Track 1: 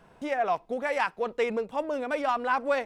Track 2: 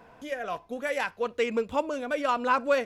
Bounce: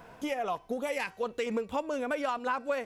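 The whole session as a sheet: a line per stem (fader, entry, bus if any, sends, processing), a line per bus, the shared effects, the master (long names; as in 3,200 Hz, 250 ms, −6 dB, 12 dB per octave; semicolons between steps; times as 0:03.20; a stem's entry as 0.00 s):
0.0 dB, 0.00 s, no send, gate pattern "xx.xxxxxxxxxxxx." 195 BPM
+0.5 dB, 0.00 s, no send, high-shelf EQ 5,300 Hz +8 dB; hum removal 381.5 Hz, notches 28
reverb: not used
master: downward compressor 4 to 1, threshold −30 dBFS, peak gain reduction 13.5 dB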